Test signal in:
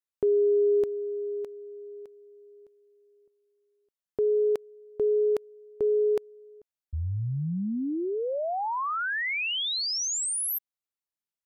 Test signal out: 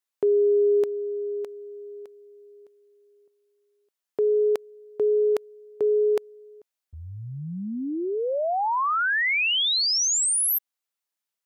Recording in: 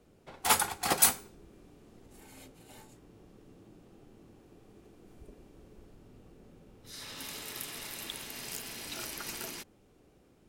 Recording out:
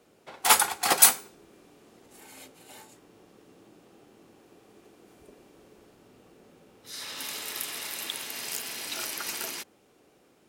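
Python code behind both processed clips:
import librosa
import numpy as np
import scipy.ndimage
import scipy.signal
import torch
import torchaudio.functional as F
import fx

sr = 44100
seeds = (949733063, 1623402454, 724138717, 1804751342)

y = fx.highpass(x, sr, hz=500.0, slope=6)
y = F.gain(torch.from_numpy(y), 6.5).numpy()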